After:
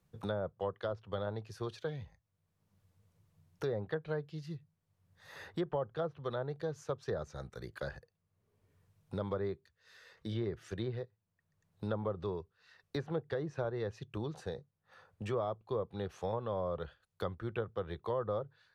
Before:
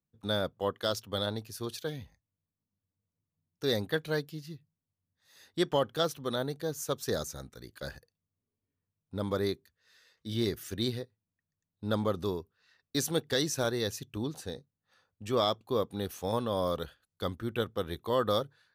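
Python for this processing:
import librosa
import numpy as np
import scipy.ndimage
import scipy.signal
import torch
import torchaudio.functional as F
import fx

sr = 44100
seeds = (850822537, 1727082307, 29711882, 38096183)

y = fx.peak_eq(x, sr, hz=260.0, db=-14.0, octaves=0.49)
y = fx.env_lowpass_down(y, sr, base_hz=1100.0, full_db=-27.0)
y = fx.high_shelf(y, sr, hz=2300.0, db=-8.5)
y = fx.band_squash(y, sr, depth_pct=70)
y = y * 10.0 ** (-2.5 / 20.0)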